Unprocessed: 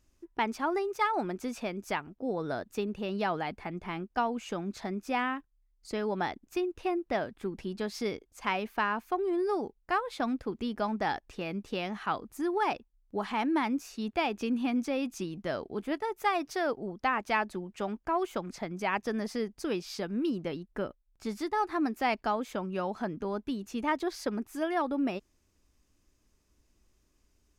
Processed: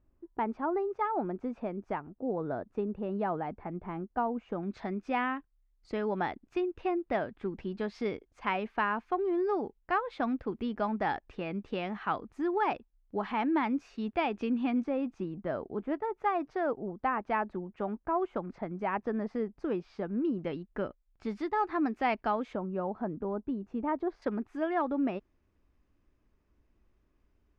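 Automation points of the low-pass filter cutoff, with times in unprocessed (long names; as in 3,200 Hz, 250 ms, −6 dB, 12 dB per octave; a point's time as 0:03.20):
1,100 Hz
from 0:04.63 2,600 Hz
from 0:14.84 1,400 Hz
from 0:20.39 2,700 Hz
from 0:22.55 1,000 Hz
from 0:24.22 2,100 Hz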